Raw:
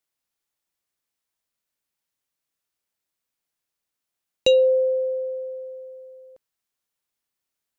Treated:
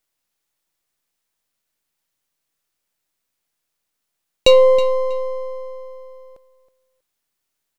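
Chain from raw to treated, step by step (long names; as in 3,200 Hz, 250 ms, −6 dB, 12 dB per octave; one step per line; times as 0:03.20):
gain on one half-wave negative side −7 dB
repeating echo 321 ms, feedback 18%, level −14.5 dB
level +8.5 dB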